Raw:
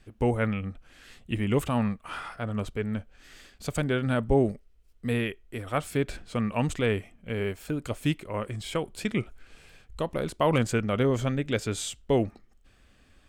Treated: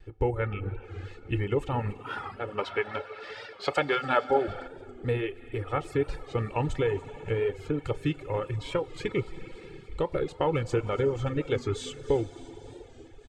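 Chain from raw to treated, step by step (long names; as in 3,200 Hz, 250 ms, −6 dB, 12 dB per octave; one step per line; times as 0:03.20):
comb filter 2.3 ms, depth 78%
downward compressor 3 to 1, threshold −25 dBFS, peak gain reduction 8 dB
0:02.03–0:04.48: high-pass filter 260 Hz 12 dB per octave
convolution reverb RT60 3.5 s, pre-delay 12 ms, DRR 6 dB
pitch vibrato 0.66 Hz 13 cents
head-to-tape spacing loss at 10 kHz 26 dB
reverb reduction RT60 0.8 s
high-shelf EQ 6,700 Hz +10 dB
delay with a high-pass on its return 287 ms, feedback 70%, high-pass 2,900 Hz, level −18 dB
0:02.58–0:04.67: gain on a spectral selection 530–5,700 Hz +10 dB
wow of a warped record 45 rpm, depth 100 cents
level +2.5 dB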